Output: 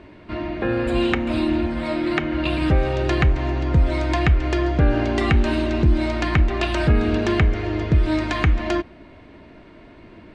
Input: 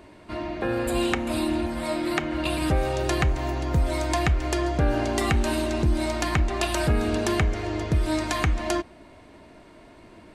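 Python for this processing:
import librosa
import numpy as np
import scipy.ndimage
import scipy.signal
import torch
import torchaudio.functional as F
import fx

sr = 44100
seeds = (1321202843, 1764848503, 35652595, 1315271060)

y = scipy.signal.sosfilt(scipy.signal.butter(2, 3100.0, 'lowpass', fs=sr, output='sos'), x)
y = fx.peak_eq(y, sr, hz=810.0, db=-5.5, octaves=1.5)
y = y * 10.0 ** (6.0 / 20.0)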